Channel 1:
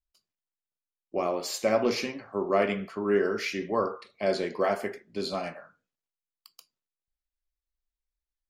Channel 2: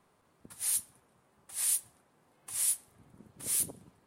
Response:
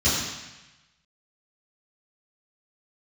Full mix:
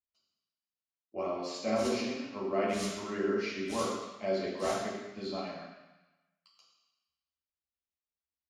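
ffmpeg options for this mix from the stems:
-filter_complex "[0:a]highpass=f=230:p=1,volume=-9.5dB,asplit=3[a][b][c];[b]volume=-12.5dB[d];[1:a]acrusher=bits=3:mix=0:aa=0.5,adelay=1100,volume=-3.5dB,asplit=2[e][f];[f]volume=-9.5dB[g];[c]apad=whole_len=227919[h];[e][h]sidechaincompress=threshold=-37dB:ratio=8:attack=16:release=390[i];[2:a]atrim=start_sample=2205[j];[d][g]amix=inputs=2:normalize=0[k];[k][j]afir=irnorm=-1:irlink=0[l];[a][i][l]amix=inputs=3:normalize=0,lowpass=4.6k"

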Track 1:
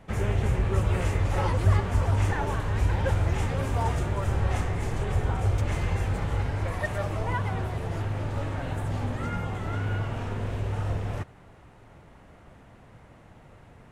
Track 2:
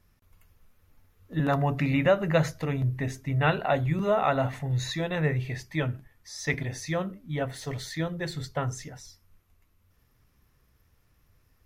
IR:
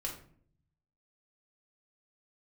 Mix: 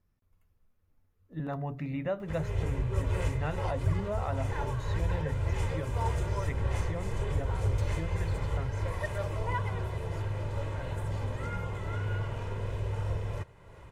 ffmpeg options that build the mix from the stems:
-filter_complex "[0:a]bandreject=f=1.5k:w=20,aecho=1:1:2:0.55,acompressor=mode=upward:threshold=-36dB:ratio=2.5,adelay=2200,volume=-5.5dB[a];[1:a]tiltshelf=f=1.3k:g=4.5,volume=-13.5dB,asplit=2[b][c];[c]apad=whole_len=710975[d];[a][d]sidechaincompress=threshold=-37dB:ratio=8:attack=9.8:release=275[e];[e][b]amix=inputs=2:normalize=0"

